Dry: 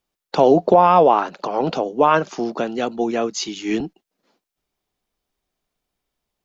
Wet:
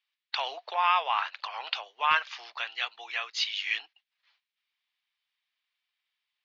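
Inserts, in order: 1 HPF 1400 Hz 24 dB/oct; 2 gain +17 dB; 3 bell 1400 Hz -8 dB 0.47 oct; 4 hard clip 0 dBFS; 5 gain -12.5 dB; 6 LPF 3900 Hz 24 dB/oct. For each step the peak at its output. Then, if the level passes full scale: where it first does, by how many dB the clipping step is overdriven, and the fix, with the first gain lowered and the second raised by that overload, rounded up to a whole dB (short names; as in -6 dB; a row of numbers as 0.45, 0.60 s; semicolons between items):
-10.0, +7.0, +5.5, 0.0, -12.5, -11.5 dBFS; step 2, 5.5 dB; step 2 +11 dB, step 5 -6.5 dB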